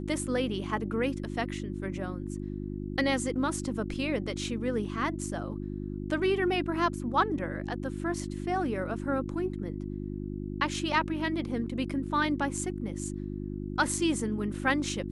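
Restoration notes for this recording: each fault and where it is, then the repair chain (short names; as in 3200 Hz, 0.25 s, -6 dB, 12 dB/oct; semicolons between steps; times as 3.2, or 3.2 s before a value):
hum 50 Hz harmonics 7 -36 dBFS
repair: de-hum 50 Hz, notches 7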